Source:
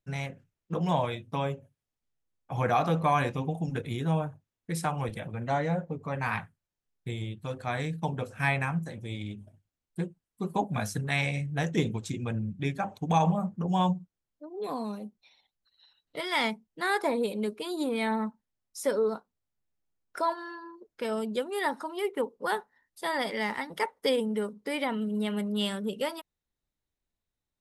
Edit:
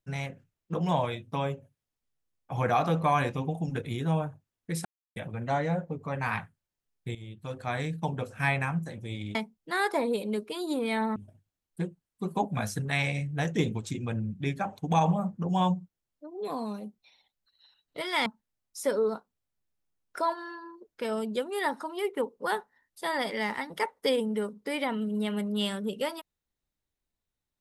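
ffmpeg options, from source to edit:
-filter_complex "[0:a]asplit=7[a][b][c][d][e][f][g];[a]atrim=end=4.85,asetpts=PTS-STARTPTS,afade=t=out:st=4.846:d=0.004:c=hsin[h];[b]atrim=start=4.85:end=5.16,asetpts=PTS-STARTPTS,volume=0[i];[c]atrim=start=5.16:end=7.15,asetpts=PTS-STARTPTS,afade=t=in:d=0.004:c=hsin,afade=t=out:st=1.986:d=0.004:c=hsin:silence=0.211349[j];[d]atrim=start=7.15:end=9.352,asetpts=PTS-STARTPTS,afade=t=in:d=0.65:c=qsin:silence=0.211349[k];[e]atrim=start=16.448:end=18.262[l];[f]atrim=start=9.348:end=16.452[m];[g]atrim=start=18.258[n];[h][i][j][k]concat=n=4:v=0:a=1[o];[o][l]acrossfade=d=0.004:c1=hsin:c2=hsin[p];[p][m]acrossfade=d=0.004:c1=hsin:c2=hsin[q];[q][n]acrossfade=d=0.004:c1=hsin:c2=hsin"

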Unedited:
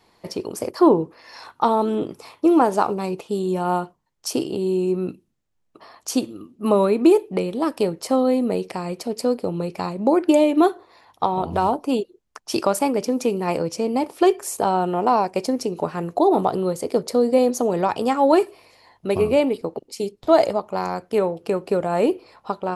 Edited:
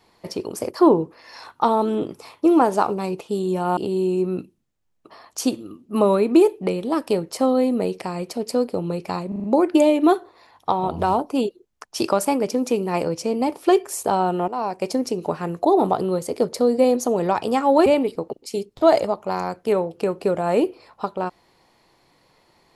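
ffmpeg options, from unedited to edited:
-filter_complex "[0:a]asplit=8[a][b][c][d][e][f][g][h];[a]atrim=end=3.772[i];[b]atrim=start=4.468:end=10.022[j];[c]atrim=start=9.978:end=10.022[k];[d]atrim=start=9.978:end=10.022[l];[e]atrim=start=9.978:end=10.022[m];[f]atrim=start=9.978:end=15.02,asetpts=PTS-STARTPTS,afade=t=out:st=5.038:d=0.004:c=hsin:silence=0.188365[n];[g]atrim=start=15.02:end=18.402,asetpts=PTS-STARTPTS,afade=t=in:d=0.44:silence=0.188365[o];[h]atrim=start=19.318[p];[i][j]acrossfade=d=0.004:c1=hsin:c2=hsin[q];[q][k]acrossfade=d=0.004:c1=hsin:c2=hsin[r];[r][l]acrossfade=d=0.004:c1=hsin:c2=hsin[s];[s][m]acrossfade=d=0.004:c1=hsin:c2=hsin[t];[n][o]concat=n=2:v=0:a=1[u];[t][u]acrossfade=d=0.004:c1=hsin:c2=hsin[v];[v][p]acrossfade=d=0.004:c1=hsin:c2=hsin"

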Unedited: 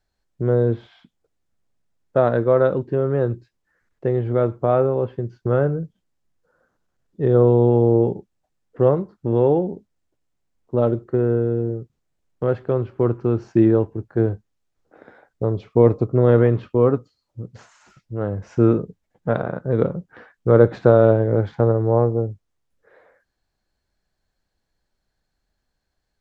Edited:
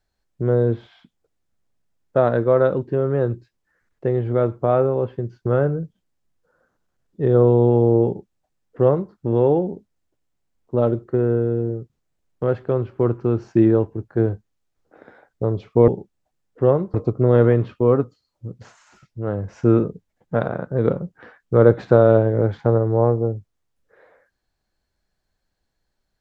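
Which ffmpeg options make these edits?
-filter_complex "[0:a]asplit=3[a][b][c];[a]atrim=end=15.882[d];[b]atrim=start=8.058:end=9.122[e];[c]atrim=start=15.878[f];[d][e]acrossfade=d=0.004:c1=hsin:c2=hsin[g];[g][f]acrossfade=d=0.004:c1=hsin:c2=hsin"

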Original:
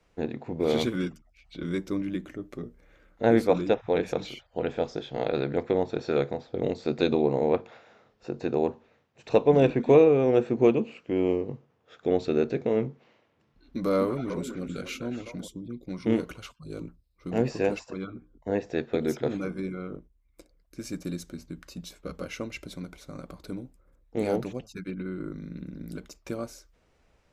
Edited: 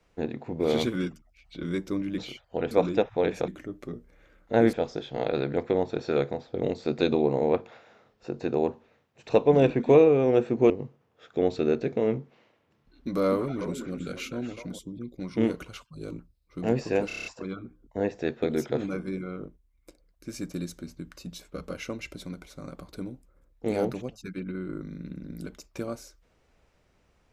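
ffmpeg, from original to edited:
-filter_complex "[0:a]asplit=12[a][b][c][d][e][f][g][h][i][j][k][l];[a]atrim=end=2.182[m];[b]atrim=start=4.198:end=4.732[n];[c]atrim=start=3.428:end=4.202[o];[d]atrim=start=2.178:end=3.432[p];[e]atrim=start=4.728:end=10.702[q];[f]atrim=start=11.388:end=17.792[r];[g]atrim=start=17.758:end=17.792[s];[h]atrim=start=17.758:end=17.792[t];[i]atrim=start=17.758:end=17.792[u];[j]atrim=start=17.758:end=17.792[v];[k]atrim=start=17.758:end=17.792[w];[l]atrim=start=17.758[x];[m][n]acrossfade=d=0.004:c1=hsin:c2=hsin[y];[y][o]acrossfade=d=0.004:c1=hsin:c2=hsin[z];[z][p]acrossfade=d=0.004:c1=hsin:c2=hsin[aa];[aa][q]acrossfade=d=0.004:c1=hsin:c2=hsin[ab];[ab][r]acrossfade=d=0.004:c1=hsin:c2=hsin[ac];[ac][s]acrossfade=d=0.004:c1=hsin:c2=hsin[ad];[ad][t]acrossfade=d=0.004:c1=hsin:c2=hsin[ae];[ae][u]acrossfade=d=0.004:c1=hsin:c2=hsin[af];[af][v]acrossfade=d=0.004:c1=hsin:c2=hsin[ag];[ag][w]acrossfade=d=0.004:c1=hsin:c2=hsin[ah];[ah][x]acrossfade=d=0.004:c1=hsin:c2=hsin"

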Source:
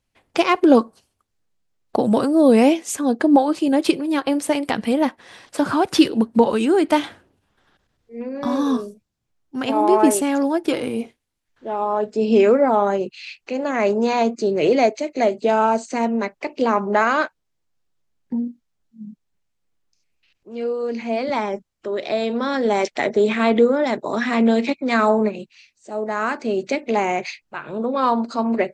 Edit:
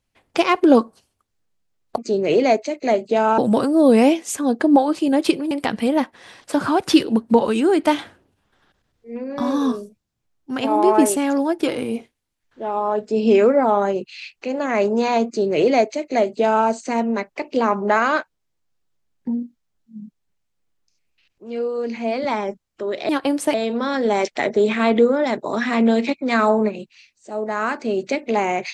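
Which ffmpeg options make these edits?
-filter_complex "[0:a]asplit=6[a][b][c][d][e][f];[a]atrim=end=1.982[g];[b]atrim=start=14.308:end=15.712[h];[c]atrim=start=1.978:end=4.112[i];[d]atrim=start=4.558:end=22.142[j];[e]atrim=start=4.108:end=4.562[k];[f]atrim=start=22.138[l];[g][h]acrossfade=d=0.004:c1=hsin:c2=hsin[m];[m][i]acrossfade=d=0.004:c1=hsin:c2=hsin[n];[n][j]acrossfade=d=0.004:c1=hsin:c2=hsin[o];[o][k]acrossfade=d=0.004:c1=hsin:c2=hsin[p];[p][l]acrossfade=d=0.004:c1=hsin:c2=hsin"

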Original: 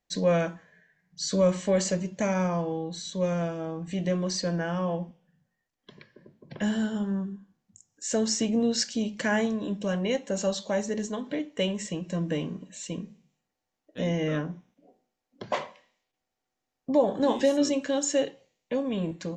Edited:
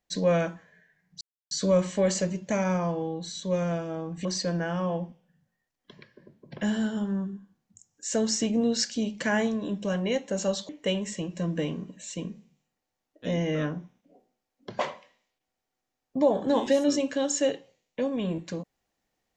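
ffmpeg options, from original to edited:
-filter_complex "[0:a]asplit=4[a][b][c][d];[a]atrim=end=1.21,asetpts=PTS-STARTPTS,afade=t=out:st=1.206:d=0.004:c=hsin,apad=pad_dur=0.3[e];[b]atrim=start=1.21:end=3.952,asetpts=PTS-STARTPTS,afade=t=in:d=0.004:c=hsin[f];[c]atrim=start=4.238:end=10.682[g];[d]atrim=start=11.418[h];[e][f]concat=n=2:v=0:a=1[i];[i][g]acrossfade=d=0.004:c1=hsin:c2=hsin[j];[j][h]acrossfade=d=0.004:c1=hsin:c2=hsin"

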